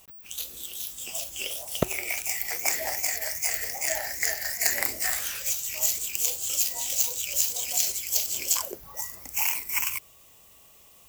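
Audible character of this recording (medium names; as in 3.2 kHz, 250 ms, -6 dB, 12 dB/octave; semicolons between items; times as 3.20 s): noise floor -54 dBFS; spectral tilt 0.0 dB/octave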